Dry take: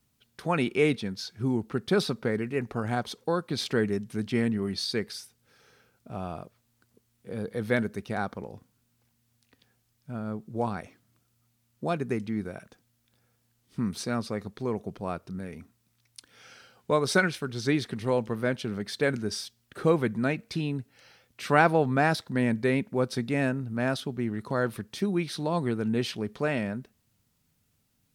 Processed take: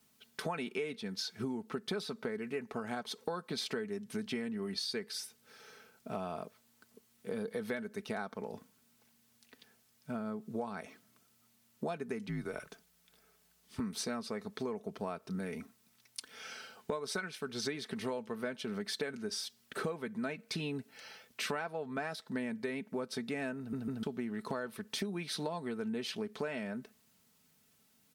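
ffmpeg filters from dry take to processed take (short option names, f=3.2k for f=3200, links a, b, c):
-filter_complex "[0:a]asettb=1/sr,asplit=3[a][b][c];[a]atrim=end=12.284[d];[b]atrim=start=12.28:end=13.8,asetpts=PTS-STARTPTS,afade=t=in:d=0.004:c=qsin,afade=t=out:st=1.516:d=0.004:c=qsin,afreqshift=-61[e];[c]atrim=start=13.796[f];[d][e]acrossfade=d=0.004:c1=hsin:c2=qsin[g];[g][f]acrossfade=d=0.004:c1=qsin:c2=hsin,asplit=4[h][i][j][k];[h]atrim=end=23.732[l];[i]atrim=start=23.578:end=23.732[m];[j]atrim=start=23.578:end=23.732[n];[k]atrim=start=24.028[o];[l][m]acrossfade=d=0.004:c1=hsin:c2=hsin[p];[p][n]acrossfade=d=0.004:c1=hsin:c2=hsin[q];[q][o]acrossfade=d=0.004:c1=hsin:c2=hsin,highpass=f=300:p=1,aecho=1:1:4.6:0.48,acompressor=threshold=-38dB:ratio=16,volume=4dB"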